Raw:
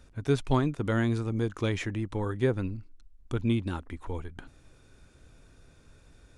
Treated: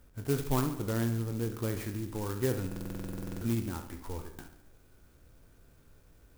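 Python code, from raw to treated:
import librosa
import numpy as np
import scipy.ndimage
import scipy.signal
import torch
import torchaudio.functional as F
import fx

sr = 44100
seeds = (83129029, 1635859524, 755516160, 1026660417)

y = fx.spec_trails(x, sr, decay_s=0.33)
y = fx.high_shelf(y, sr, hz=2100.0, db=-7.5, at=(0.61, 2.22))
y = fx.echo_feedback(y, sr, ms=70, feedback_pct=55, wet_db=-11.0)
y = fx.buffer_glitch(y, sr, at_s=(2.67,), block=2048, repeats=15)
y = fx.clock_jitter(y, sr, seeds[0], jitter_ms=0.08)
y = y * 10.0 ** (-5.0 / 20.0)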